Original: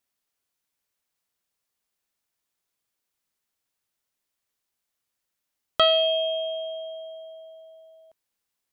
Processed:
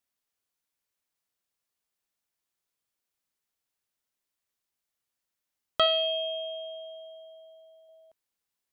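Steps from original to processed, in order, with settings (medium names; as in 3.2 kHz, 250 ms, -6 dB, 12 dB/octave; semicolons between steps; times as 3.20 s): 5.86–7.89 s: peaking EQ 510 Hz -11.5 dB 0.37 oct; trim -4 dB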